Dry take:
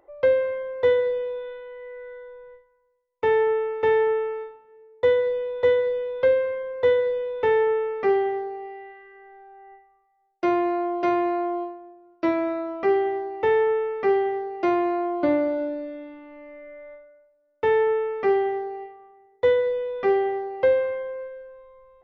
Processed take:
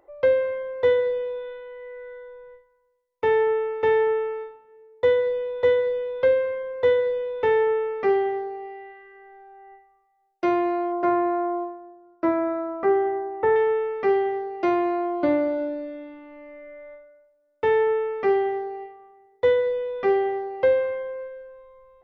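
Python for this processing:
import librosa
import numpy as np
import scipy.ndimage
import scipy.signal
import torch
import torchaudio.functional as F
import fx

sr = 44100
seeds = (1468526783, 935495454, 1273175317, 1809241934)

y = fx.high_shelf_res(x, sr, hz=2100.0, db=-10.5, q=1.5, at=(10.92, 13.56))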